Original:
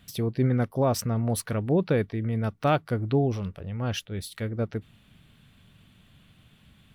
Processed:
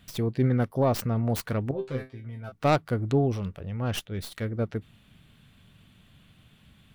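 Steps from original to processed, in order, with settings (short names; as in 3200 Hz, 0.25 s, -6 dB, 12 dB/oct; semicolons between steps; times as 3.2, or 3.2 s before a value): tracing distortion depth 0.2 ms; 1.71–2.52 resonator 130 Hz, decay 0.21 s, harmonics all, mix 100%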